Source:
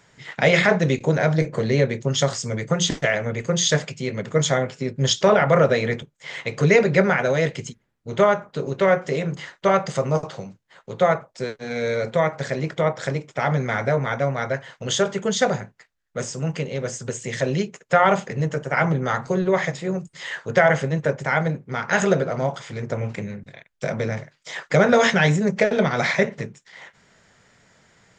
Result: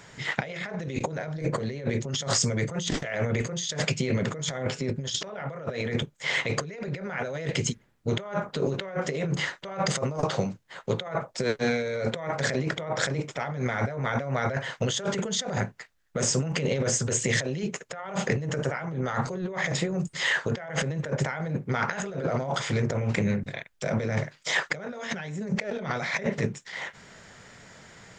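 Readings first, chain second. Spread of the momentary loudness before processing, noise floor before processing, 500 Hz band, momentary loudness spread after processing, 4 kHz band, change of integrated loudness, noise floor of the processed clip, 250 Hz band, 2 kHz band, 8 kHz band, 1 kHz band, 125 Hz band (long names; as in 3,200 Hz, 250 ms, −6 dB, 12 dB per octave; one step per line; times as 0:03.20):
14 LU, −64 dBFS, −10.0 dB, 8 LU, −3.5 dB, −7.5 dB, −56 dBFS, −5.5 dB, −6.5 dB, −1.5 dB, −9.5 dB, −5.0 dB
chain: compressor whose output falls as the input rises −30 dBFS, ratio −1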